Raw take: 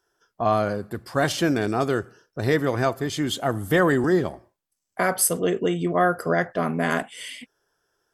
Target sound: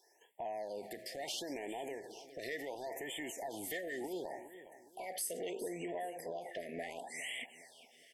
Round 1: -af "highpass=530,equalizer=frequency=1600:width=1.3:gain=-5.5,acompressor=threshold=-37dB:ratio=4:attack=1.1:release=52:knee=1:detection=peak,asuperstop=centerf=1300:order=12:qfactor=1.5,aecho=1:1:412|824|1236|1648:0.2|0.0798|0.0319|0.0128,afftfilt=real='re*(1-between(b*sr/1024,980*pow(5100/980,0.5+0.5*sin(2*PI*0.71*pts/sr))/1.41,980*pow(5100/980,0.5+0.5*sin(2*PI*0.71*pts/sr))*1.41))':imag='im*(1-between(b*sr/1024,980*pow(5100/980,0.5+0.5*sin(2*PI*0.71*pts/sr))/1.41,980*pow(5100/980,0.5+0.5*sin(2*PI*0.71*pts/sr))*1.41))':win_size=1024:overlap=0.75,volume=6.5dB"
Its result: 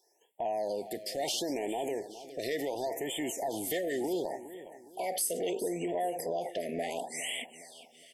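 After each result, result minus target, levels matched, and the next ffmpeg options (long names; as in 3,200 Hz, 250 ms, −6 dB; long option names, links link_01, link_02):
downward compressor: peak gain reduction −9.5 dB; 2,000 Hz band −5.5 dB
-af "highpass=530,equalizer=frequency=1600:width=1.3:gain=-5.5,acompressor=threshold=-47dB:ratio=4:attack=1.1:release=52:knee=1:detection=peak,asuperstop=centerf=1300:order=12:qfactor=1.5,aecho=1:1:412|824|1236|1648:0.2|0.0798|0.0319|0.0128,afftfilt=real='re*(1-between(b*sr/1024,980*pow(5100/980,0.5+0.5*sin(2*PI*0.71*pts/sr))/1.41,980*pow(5100/980,0.5+0.5*sin(2*PI*0.71*pts/sr))*1.41))':imag='im*(1-between(b*sr/1024,980*pow(5100/980,0.5+0.5*sin(2*PI*0.71*pts/sr))/1.41,980*pow(5100/980,0.5+0.5*sin(2*PI*0.71*pts/sr))*1.41))':win_size=1024:overlap=0.75,volume=6.5dB"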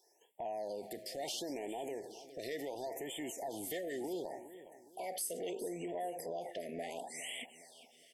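2,000 Hz band −5.5 dB
-af "highpass=530,equalizer=frequency=1600:width=1.3:gain=6,acompressor=threshold=-47dB:ratio=4:attack=1.1:release=52:knee=1:detection=peak,asuperstop=centerf=1300:order=12:qfactor=1.5,aecho=1:1:412|824|1236|1648:0.2|0.0798|0.0319|0.0128,afftfilt=real='re*(1-between(b*sr/1024,980*pow(5100/980,0.5+0.5*sin(2*PI*0.71*pts/sr))/1.41,980*pow(5100/980,0.5+0.5*sin(2*PI*0.71*pts/sr))*1.41))':imag='im*(1-between(b*sr/1024,980*pow(5100/980,0.5+0.5*sin(2*PI*0.71*pts/sr))/1.41,980*pow(5100/980,0.5+0.5*sin(2*PI*0.71*pts/sr))*1.41))':win_size=1024:overlap=0.75,volume=6.5dB"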